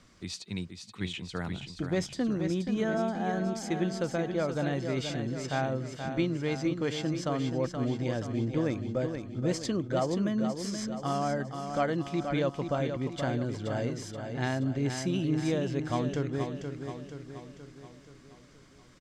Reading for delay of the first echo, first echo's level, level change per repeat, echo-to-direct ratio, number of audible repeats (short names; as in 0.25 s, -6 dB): 0.477 s, -7.0 dB, -5.5 dB, -5.5 dB, 6